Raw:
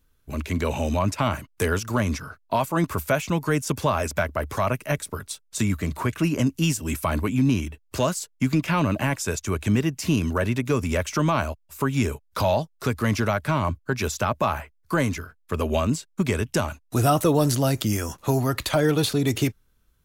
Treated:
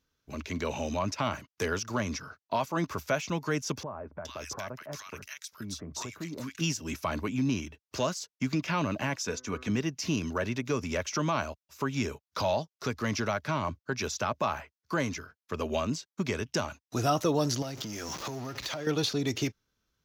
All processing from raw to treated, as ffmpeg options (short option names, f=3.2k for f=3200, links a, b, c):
-filter_complex "[0:a]asettb=1/sr,asplit=3[a][b][c];[a]atrim=end=3.834[d];[b]atrim=start=3.83:end=6.61,asetpts=PTS-STARTPTS,afade=t=in:d=0.004:c=qsin,afade=t=out:st=2.776:d=0.004:c=qsin,highshelf=f=3.7k:g=8,acompressor=threshold=-30dB:ratio=2.5:attack=3.2:release=140:knee=1:detection=peak,acrossover=split=1300[e][f];[f]adelay=420[g];[e][g]amix=inputs=2:normalize=0,atrim=end_sample=122598[h];[c]atrim=start=6.606[i];[d][h]acrossfade=d=0.004:c1=hsin:c2=qsin[j];[j][i]acrossfade=d=0.004:c1=qsin:c2=hsin,asettb=1/sr,asplit=3[k][l][m];[k]atrim=end=9.274[n];[l]atrim=start=9.27:end=9.7,asetpts=PTS-STARTPTS,afade=t=in:d=0.004:c=qsin,afade=t=out:st=0.426:d=0.004:c=qsin,highshelf=f=5.5k:g=-7.5,aecho=1:1:4.1:0.55,atrim=end_sample=18963,bandreject=f=126.6:t=h:w=4,bandreject=f=253.2:t=h:w=4,bandreject=f=379.8:t=h:w=4,bandreject=f=506.4:t=h:w=4,bandreject=f=633:t=h:w=4,bandreject=f=759.6:t=h:w=4,bandreject=f=886.2:t=h:w=4,bandreject=f=1.0128k:t=h:w=4,bandreject=f=1.1394k:t=h:w=4,bandreject=f=1.266k:t=h:w=4,bandreject=f=1.3926k:t=h:w=4,bandreject=f=1.5192k:t=h:w=4,bandreject=f=1.6458k:t=h:w=4,bandreject=f=1.7724k:t=h:w=4,bandreject=f=1.899k:t=h:w=4,bandreject=f=2.0256k:t=h:w=4,bandreject=f=2.1522k:t=h:w=4[o];[m]atrim=start=9.696[p];[n][o]acrossfade=d=0.004:c1=hsin:c2=qsin[q];[q][p]acrossfade=d=0.004:c1=qsin:c2=hsin,asettb=1/sr,asplit=3[r][s][t];[r]atrim=end=17.624[u];[s]atrim=start=17.62:end=18.87,asetpts=PTS-STARTPTS,afade=t=in:d=0.004:c=qsin,afade=t=out:st=1.246:d=0.004:c=qsin,aeval=exprs='val(0)+0.5*0.0473*sgn(val(0))':c=same,equalizer=f=92:w=4.2:g=-5.5,acompressor=threshold=-27dB:ratio=6:attack=3.2:release=140:knee=1:detection=peak[v];[t]atrim=start=18.866[w];[u][v]acrossfade=d=0.004:c1=hsin:c2=qsin[x];[x][w]acrossfade=d=0.004:c1=qsin:c2=hsin,highpass=f=160:p=1,highshelf=f=7.2k:t=q:w=3:g=-7.5,volume=-6dB"